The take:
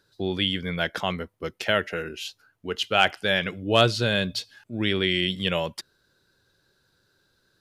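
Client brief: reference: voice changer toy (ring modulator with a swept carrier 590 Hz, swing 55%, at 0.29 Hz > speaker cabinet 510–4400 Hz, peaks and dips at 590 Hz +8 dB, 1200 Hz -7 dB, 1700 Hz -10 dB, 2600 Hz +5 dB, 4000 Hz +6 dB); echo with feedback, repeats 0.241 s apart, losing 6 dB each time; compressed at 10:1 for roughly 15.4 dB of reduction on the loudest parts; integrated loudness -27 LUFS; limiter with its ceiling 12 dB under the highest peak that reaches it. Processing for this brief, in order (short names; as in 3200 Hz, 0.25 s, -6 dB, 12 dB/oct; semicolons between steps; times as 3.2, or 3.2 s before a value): compressor 10:1, threshold -29 dBFS; limiter -25.5 dBFS; feedback echo 0.241 s, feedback 50%, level -6 dB; ring modulator with a swept carrier 590 Hz, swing 55%, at 0.29 Hz; speaker cabinet 510–4400 Hz, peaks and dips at 590 Hz +8 dB, 1200 Hz -7 dB, 1700 Hz -10 dB, 2600 Hz +5 dB, 4000 Hz +6 dB; gain +12 dB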